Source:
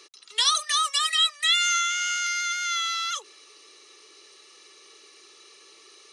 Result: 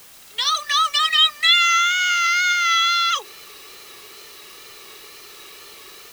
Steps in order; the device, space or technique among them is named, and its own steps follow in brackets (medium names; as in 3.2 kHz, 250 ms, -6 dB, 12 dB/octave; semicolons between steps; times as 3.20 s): dictaphone (band-pass 360–4100 Hz; level rider gain up to 13.5 dB; wow and flutter; white noise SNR 24 dB); trim -2.5 dB